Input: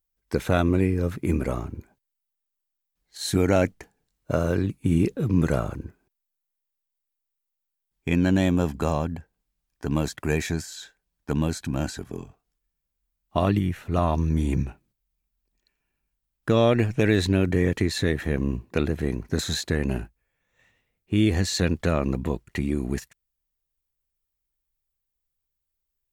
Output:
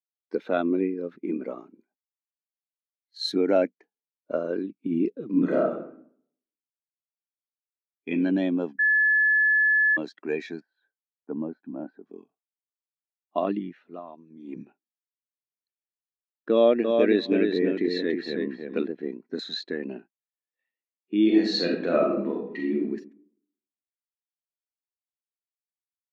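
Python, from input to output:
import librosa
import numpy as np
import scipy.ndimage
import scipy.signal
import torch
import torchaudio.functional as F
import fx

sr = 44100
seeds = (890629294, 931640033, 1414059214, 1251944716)

y = fx.high_shelf(x, sr, hz=5000.0, db=10.0, at=(1.58, 3.32))
y = fx.reverb_throw(y, sr, start_s=5.26, length_s=2.83, rt60_s=0.91, drr_db=-2.0)
y = fx.lowpass(y, sr, hz=1200.0, slope=12, at=(10.6, 12.06))
y = fx.echo_feedback(y, sr, ms=322, feedback_pct=20, wet_db=-3, at=(16.52, 18.87))
y = fx.reverb_throw(y, sr, start_s=21.22, length_s=1.6, rt60_s=1.0, drr_db=-2.0)
y = fx.edit(y, sr, fx.bleep(start_s=8.79, length_s=1.18, hz=1720.0, db=-20.5),
    fx.fade_down_up(start_s=13.78, length_s=0.85, db=-10.0, fade_s=0.24), tone=tone)
y = scipy.signal.sosfilt(scipy.signal.butter(4, 230.0, 'highpass', fs=sr, output='sos'), y)
y = fx.high_shelf_res(y, sr, hz=6100.0, db=-10.0, q=1.5)
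y = fx.spectral_expand(y, sr, expansion=1.5)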